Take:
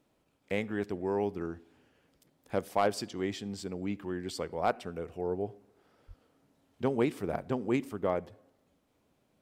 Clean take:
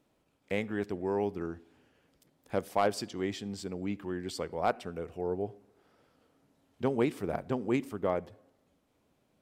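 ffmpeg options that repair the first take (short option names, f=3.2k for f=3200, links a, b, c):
-filter_complex "[0:a]asplit=3[a][b][c];[a]afade=t=out:st=6.07:d=0.02[d];[b]highpass=f=140:w=0.5412,highpass=f=140:w=1.3066,afade=t=in:st=6.07:d=0.02,afade=t=out:st=6.19:d=0.02[e];[c]afade=t=in:st=6.19:d=0.02[f];[d][e][f]amix=inputs=3:normalize=0"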